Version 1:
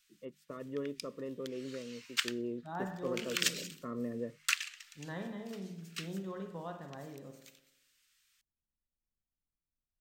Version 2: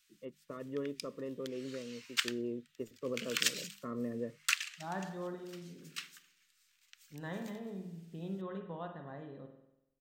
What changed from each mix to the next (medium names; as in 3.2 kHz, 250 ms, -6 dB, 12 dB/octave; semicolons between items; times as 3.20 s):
second voice: entry +2.15 s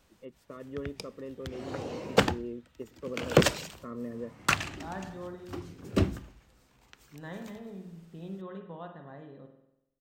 background: remove Bessel high-pass 2.5 kHz, order 8